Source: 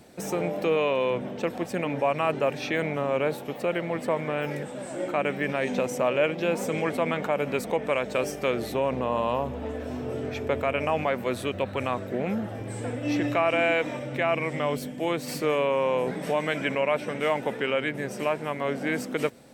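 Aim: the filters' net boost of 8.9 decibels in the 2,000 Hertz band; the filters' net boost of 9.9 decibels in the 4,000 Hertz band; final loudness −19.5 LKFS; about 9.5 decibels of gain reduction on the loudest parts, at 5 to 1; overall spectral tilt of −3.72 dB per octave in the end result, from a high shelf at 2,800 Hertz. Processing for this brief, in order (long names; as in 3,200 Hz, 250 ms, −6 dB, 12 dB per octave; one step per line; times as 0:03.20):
parametric band 2,000 Hz +6.5 dB
high-shelf EQ 2,800 Hz +5 dB
parametric band 4,000 Hz +7 dB
downward compressor 5 to 1, threshold −26 dBFS
level +10.5 dB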